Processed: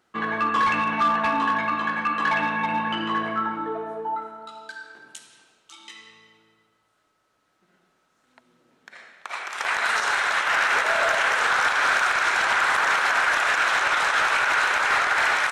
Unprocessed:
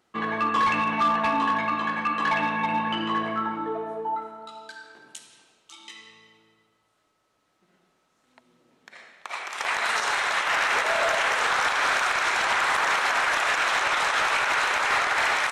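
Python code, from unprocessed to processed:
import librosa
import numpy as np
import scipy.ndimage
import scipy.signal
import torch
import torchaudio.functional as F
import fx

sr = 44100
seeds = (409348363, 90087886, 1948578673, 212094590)

y = fx.peak_eq(x, sr, hz=1500.0, db=5.5, octaves=0.39)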